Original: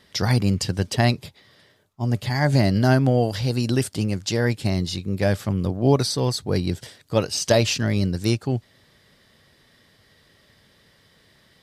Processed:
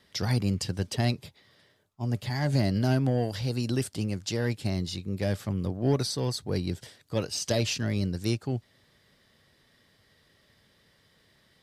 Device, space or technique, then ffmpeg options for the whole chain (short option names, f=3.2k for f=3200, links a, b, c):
one-band saturation: -filter_complex "[0:a]acrossover=split=480|2400[a][b][c];[b]asoftclip=type=tanh:threshold=-24.5dB[d];[a][d][c]amix=inputs=3:normalize=0,volume=-6.5dB"